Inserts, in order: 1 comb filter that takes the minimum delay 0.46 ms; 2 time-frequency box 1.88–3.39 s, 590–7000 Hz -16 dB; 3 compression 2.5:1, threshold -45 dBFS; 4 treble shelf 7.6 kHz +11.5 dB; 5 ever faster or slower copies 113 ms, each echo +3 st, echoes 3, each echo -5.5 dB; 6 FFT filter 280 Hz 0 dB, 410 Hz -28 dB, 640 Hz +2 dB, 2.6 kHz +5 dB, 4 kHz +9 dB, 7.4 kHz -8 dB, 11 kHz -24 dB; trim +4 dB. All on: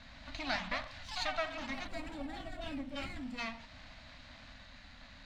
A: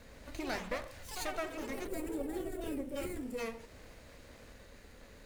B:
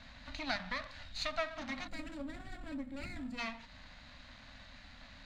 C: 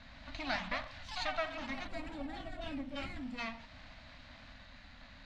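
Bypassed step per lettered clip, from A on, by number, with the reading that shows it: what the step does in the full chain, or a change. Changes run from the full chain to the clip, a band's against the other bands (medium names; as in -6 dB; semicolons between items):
6, crest factor change -3.5 dB; 5, loudness change -1.5 LU; 4, 8 kHz band -4.0 dB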